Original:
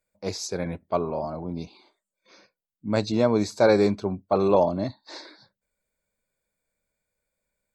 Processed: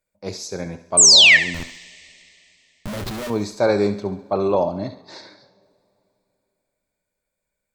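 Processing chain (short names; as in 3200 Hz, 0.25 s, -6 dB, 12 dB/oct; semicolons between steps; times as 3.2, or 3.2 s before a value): 0.97–1.37 painted sound fall 1700–8700 Hz -10 dBFS; 1.54–3.3 Schmitt trigger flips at -32.5 dBFS; on a send: thinning echo 69 ms, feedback 49%, high-pass 420 Hz, level -12 dB; on the sum: two-slope reverb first 0.51 s, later 3.1 s, from -17 dB, DRR 14 dB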